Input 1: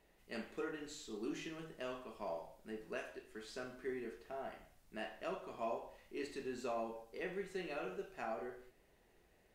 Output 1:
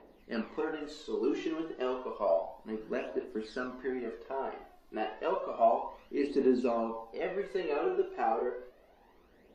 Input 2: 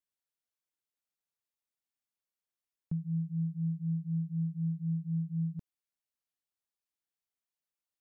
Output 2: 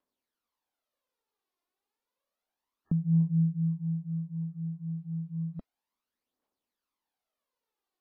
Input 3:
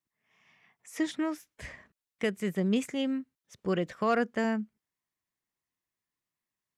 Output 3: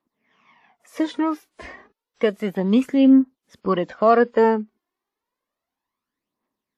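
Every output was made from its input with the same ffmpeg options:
ffmpeg -i in.wav -af "aphaser=in_gain=1:out_gain=1:delay=2.9:decay=0.59:speed=0.31:type=triangular,equalizer=frequency=125:width_type=o:width=1:gain=-7,equalizer=frequency=250:width_type=o:width=1:gain=12,equalizer=frequency=500:width_type=o:width=1:gain=8,equalizer=frequency=1000:width_type=o:width=1:gain=10,equalizer=frequency=4000:width_type=o:width=1:gain=4,equalizer=frequency=8000:width_type=o:width=1:gain=-8" -ar 32000 -c:a wmav2 -b:a 64k out.wma

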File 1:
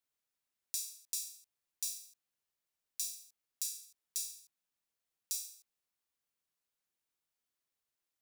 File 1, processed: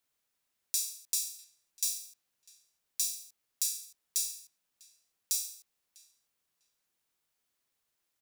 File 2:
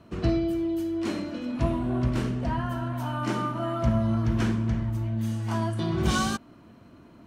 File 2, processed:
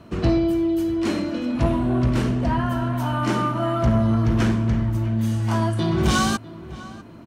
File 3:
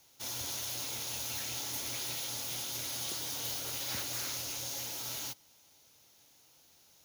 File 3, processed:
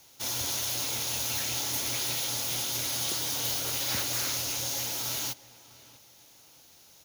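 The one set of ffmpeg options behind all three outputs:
ffmpeg -i in.wav -filter_complex "[0:a]asplit=2[link_01][link_02];[link_02]adelay=649,lowpass=frequency=2600:poles=1,volume=-18.5dB,asplit=2[link_03][link_04];[link_04]adelay=649,lowpass=frequency=2600:poles=1,volume=0.29[link_05];[link_01][link_03][link_05]amix=inputs=3:normalize=0,asoftclip=type=tanh:threshold=-18dB,volume=7dB" out.wav

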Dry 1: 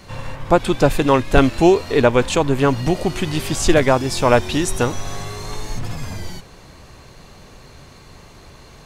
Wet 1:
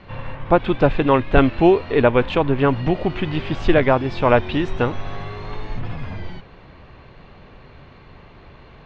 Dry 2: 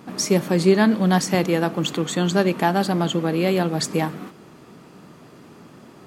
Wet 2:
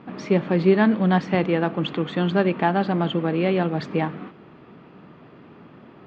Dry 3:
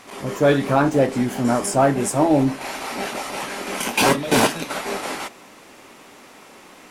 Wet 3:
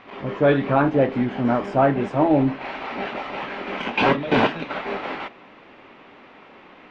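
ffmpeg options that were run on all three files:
ffmpeg -i in.wav -af "lowpass=frequency=3200:width=0.5412,lowpass=frequency=3200:width=1.3066,volume=-1dB" out.wav

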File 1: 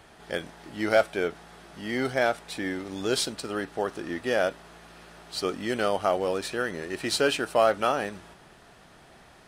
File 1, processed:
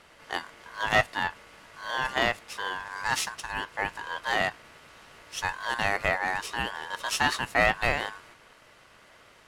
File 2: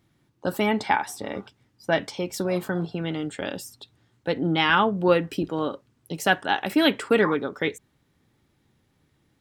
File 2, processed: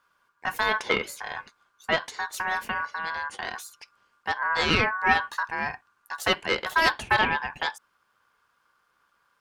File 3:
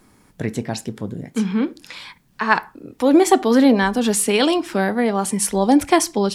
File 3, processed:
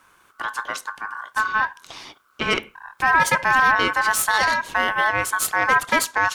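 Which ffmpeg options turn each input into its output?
ffmpeg -i in.wav -af "aeval=exprs='(tanh(3.55*val(0)+0.7)-tanh(0.7))/3.55':channel_layout=same,aeval=exprs='val(0)*sin(2*PI*1300*n/s)':channel_layout=same,apsyclip=12.5dB,volume=-8dB" out.wav

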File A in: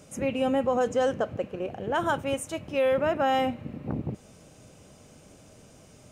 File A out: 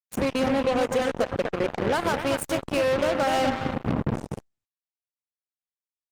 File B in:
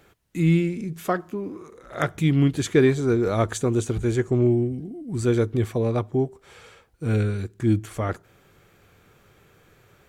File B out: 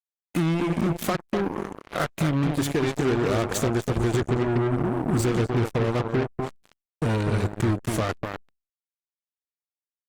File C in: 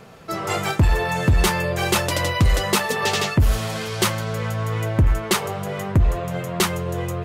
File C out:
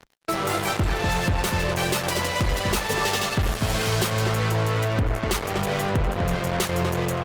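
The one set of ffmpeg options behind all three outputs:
ffmpeg -i in.wav -filter_complex "[0:a]acompressor=threshold=-29dB:ratio=16,asplit=2[link_01][link_02];[link_02]adelay=247,lowpass=frequency=1400:poles=1,volume=-4.5dB,asplit=2[link_03][link_04];[link_04]adelay=247,lowpass=frequency=1400:poles=1,volume=0.28,asplit=2[link_05][link_06];[link_06]adelay=247,lowpass=frequency=1400:poles=1,volume=0.28,asplit=2[link_07][link_08];[link_08]adelay=247,lowpass=frequency=1400:poles=1,volume=0.28[link_09];[link_03][link_05][link_07][link_09]amix=inputs=4:normalize=0[link_10];[link_01][link_10]amix=inputs=2:normalize=0,aeval=exprs='0.188*(cos(1*acos(clip(val(0)/0.188,-1,1)))-cos(1*PI/2))+0.0335*(cos(2*acos(clip(val(0)/0.188,-1,1)))-cos(2*PI/2))+0.00944*(cos(5*acos(clip(val(0)/0.188,-1,1)))-cos(5*PI/2))':channel_layout=same,acrusher=bits=4:mix=0:aa=0.5,asoftclip=type=hard:threshold=-21dB,volume=6dB" -ar 48000 -c:a libopus -b:a 32k out.opus

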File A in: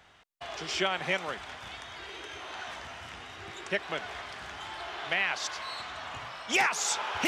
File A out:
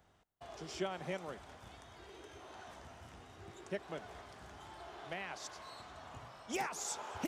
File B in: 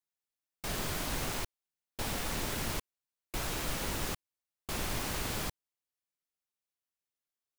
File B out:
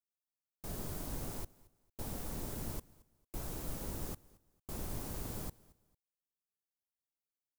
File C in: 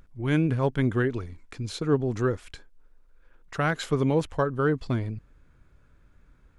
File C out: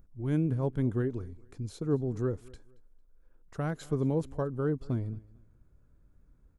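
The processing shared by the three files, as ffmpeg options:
ffmpeg -i in.wav -af "equalizer=frequency=2500:width=0.42:gain=-14.5,aecho=1:1:225|450:0.0708|0.0205,volume=-3.5dB" out.wav

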